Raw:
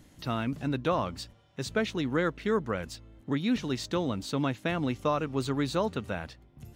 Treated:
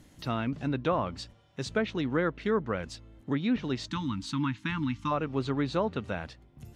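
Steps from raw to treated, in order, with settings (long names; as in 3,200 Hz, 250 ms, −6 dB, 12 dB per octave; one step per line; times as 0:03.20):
gain on a spectral selection 0:03.87–0:05.11, 330–860 Hz −28 dB
treble cut that deepens with the level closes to 2,400 Hz, closed at −23.5 dBFS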